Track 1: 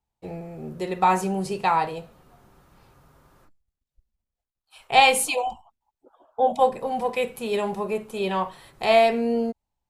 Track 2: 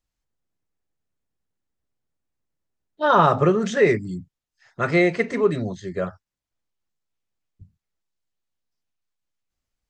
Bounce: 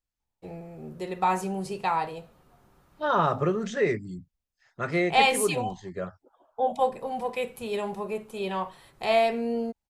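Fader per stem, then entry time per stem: -5.0 dB, -7.5 dB; 0.20 s, 0.00 s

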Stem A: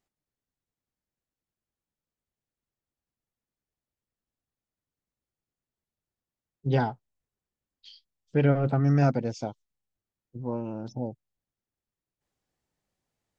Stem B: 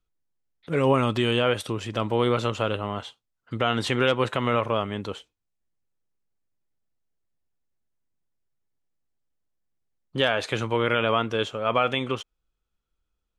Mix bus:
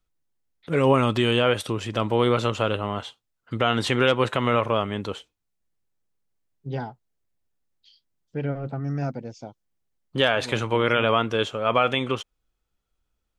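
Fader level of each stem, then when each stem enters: -6.0 dB, +2.0 dB; 0.00 s, 0.00 s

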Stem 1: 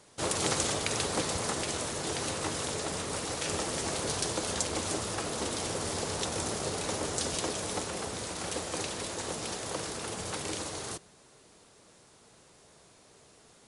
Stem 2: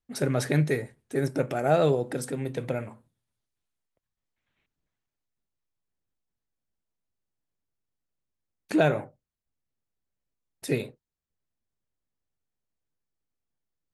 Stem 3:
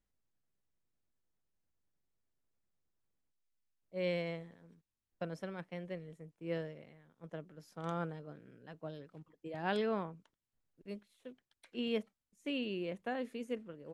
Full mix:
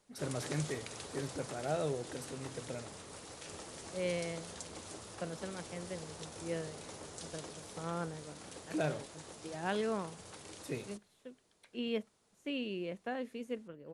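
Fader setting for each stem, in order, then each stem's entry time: -15.0 dB, -13.0 dB, -0.5 dB; 0.00 s, 0.00 s, 0.00 s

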